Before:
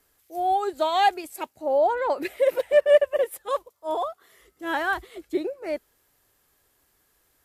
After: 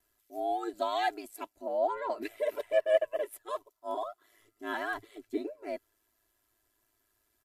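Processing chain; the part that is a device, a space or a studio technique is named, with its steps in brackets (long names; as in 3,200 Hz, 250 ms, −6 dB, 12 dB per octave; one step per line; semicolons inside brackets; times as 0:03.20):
ring-modulated robot voice (ring modulation 54 Hz; comb filter 3 ms, depth 78%)
level −8 dB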